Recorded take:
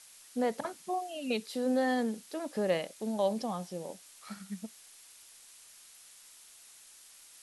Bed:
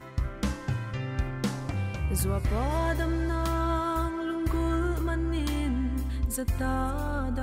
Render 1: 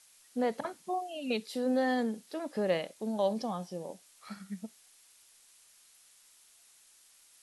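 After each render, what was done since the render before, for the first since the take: noise print and reduce 6 dB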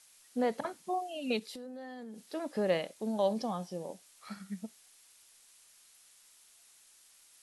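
1.39–2.26 s: compression 16:1, threshold -41 dBFS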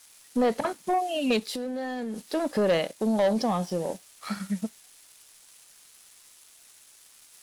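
in parallel at -2 dB: compression, threshold -39 dBFS, peak gain reduction 14 dB; on the sum: waveshaping leveller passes 2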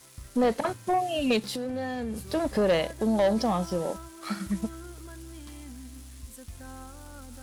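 add bed -15.5 dB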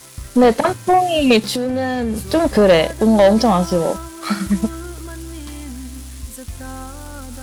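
trim +12 dB

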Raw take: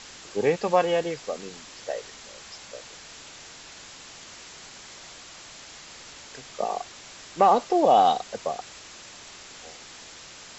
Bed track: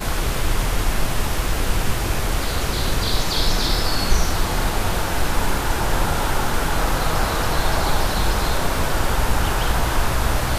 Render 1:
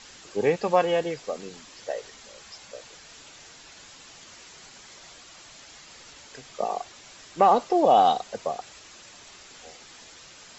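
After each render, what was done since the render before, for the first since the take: noise reduction 6 dB, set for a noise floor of -46 dBFS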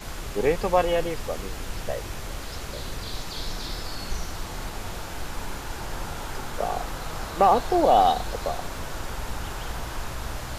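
add bed track -13 dB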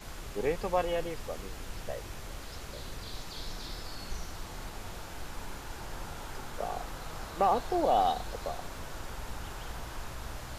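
trim -8 dB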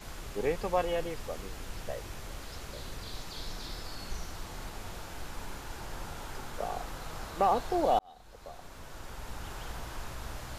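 7.99–9.57 s: fade in linear

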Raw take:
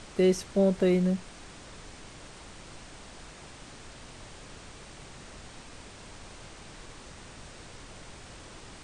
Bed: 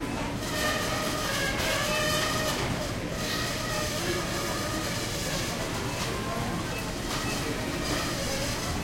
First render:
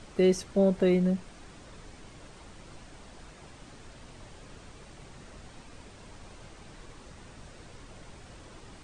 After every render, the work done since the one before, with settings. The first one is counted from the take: noise reduction 6 dB, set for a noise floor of -48 dBFS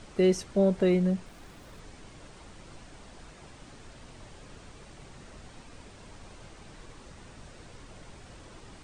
1.26–1.80 s: dead-time distortion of 0.078 ms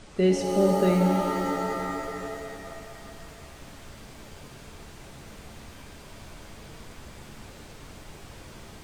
pitch-shifted reverb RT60 2.8 s, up +7 st, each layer -2 dB, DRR 2 dB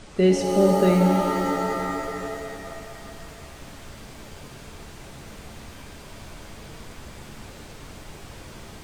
trim +3.5 dB

